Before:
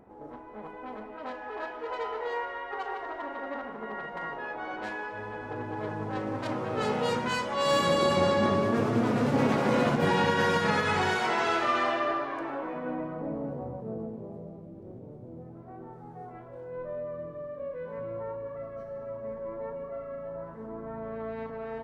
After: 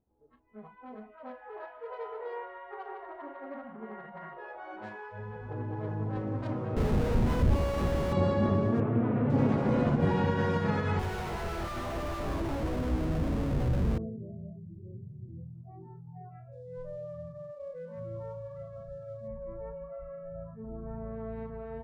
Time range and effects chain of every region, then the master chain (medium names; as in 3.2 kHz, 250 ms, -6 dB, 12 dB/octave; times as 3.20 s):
1.15–4.37 s: distance through air 140 m + loudspeaker Doppler distortion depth 0.11 ms
6.76–8.13 s: bass shelf 74 Hz -10.5 dB + Schmitt trigger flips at -29.5 dBFS
8.80–9.30 s: low-pass 2.8 kHz 24 dB/octave + bass shelf 210 Hz -3.5 dB
10.99–13.98 s: band-stop 3.4 kHz, Q 9.8 + Schmitt trigger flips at -41.5 dBFS
16.52–19.28 s: CVSD coder 64 kbps + distance through air 65 m
whole clip: tilt EQ -3 dB/octave; spectral noise reduction 24 dB; peaking EQ 65 Hz +8.5 dB 1.2 oct; trim -7 dB